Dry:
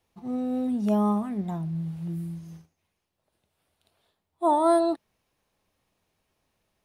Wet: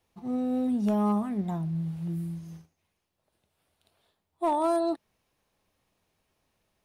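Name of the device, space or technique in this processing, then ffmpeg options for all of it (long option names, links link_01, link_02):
limiter into clipper: -af "alimiter=limit=-18.5dB:level=0:latency=1:release=304,asoftclip=type=hard:threshold=-20.5dB"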